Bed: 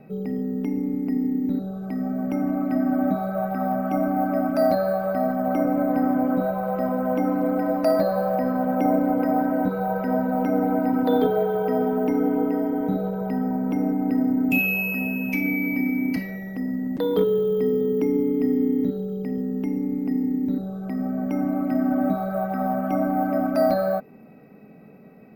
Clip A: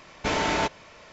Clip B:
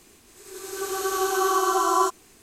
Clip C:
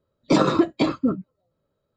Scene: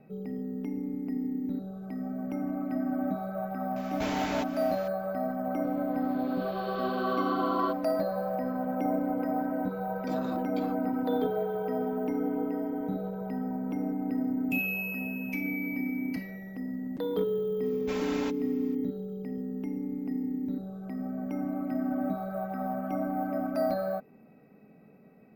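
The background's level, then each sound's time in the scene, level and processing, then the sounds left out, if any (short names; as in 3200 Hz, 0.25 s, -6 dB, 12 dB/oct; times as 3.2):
bed -8.5 dB
3.76 add A -0.5 dB + compressor 2:1, threshold -38 dBFS
5.63 add B -8.5 dB + rippled Chebyshev low-pass 4600 Hz, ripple 3 dB
9.77 add C -13 dB + compressor, threshold -24 dBFS
17.63 add A -14.5 dB + comb 3.8 ms, depth 75%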